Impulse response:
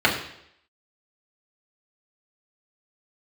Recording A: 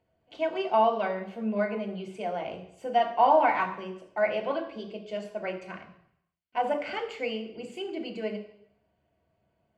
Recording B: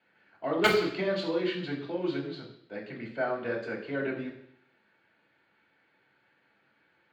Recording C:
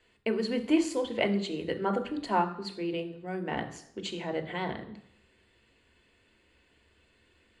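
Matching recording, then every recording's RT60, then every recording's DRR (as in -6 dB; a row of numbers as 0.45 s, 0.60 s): B; 0.75 s, 0.75 s, 0.75 s; 1.0 dB, -4.5 dB, 5.0 dB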